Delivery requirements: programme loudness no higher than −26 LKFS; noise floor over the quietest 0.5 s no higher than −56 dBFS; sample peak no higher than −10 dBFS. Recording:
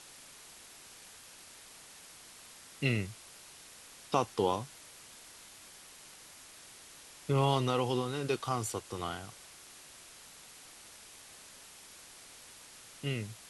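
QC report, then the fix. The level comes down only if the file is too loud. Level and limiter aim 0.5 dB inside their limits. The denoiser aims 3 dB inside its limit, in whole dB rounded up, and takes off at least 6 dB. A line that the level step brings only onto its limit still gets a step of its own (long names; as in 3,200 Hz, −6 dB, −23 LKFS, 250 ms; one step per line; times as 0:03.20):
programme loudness −33.5 LKFS: in spec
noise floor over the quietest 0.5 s −54 dBFS: out of spec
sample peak −13.5 dBFS: in spec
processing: broadband denoise 6 dB, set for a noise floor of −54 dBFS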